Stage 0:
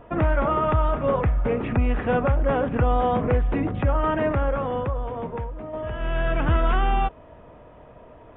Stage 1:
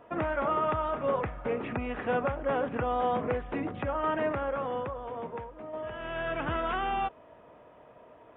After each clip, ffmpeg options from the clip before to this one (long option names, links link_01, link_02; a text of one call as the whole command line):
ffmpeg -i in.wav -af "highpass=frequency=330:poles=1,volume=-4.5dB" out.wav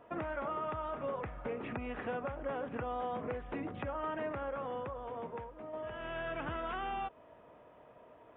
ffmpeg -i in.wav -af "acompressor=threshold=-32dB:ratio=3,volume=-4dB" out.wav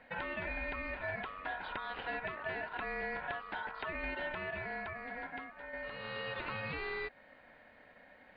ffmpeg -i in.wav -af "aeval=exprs='val(0)*sin(2*PI*1200*n/s)':channel_layout=same,volume=1.5dB" out.wav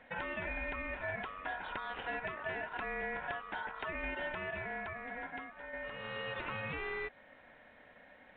ffmpeg -i in.wav -ar 8000 -c:a pcm_alaw out.wav